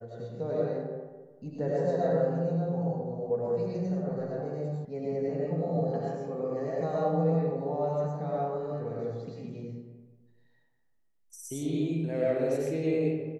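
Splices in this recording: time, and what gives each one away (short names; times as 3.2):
4.85 sound cut off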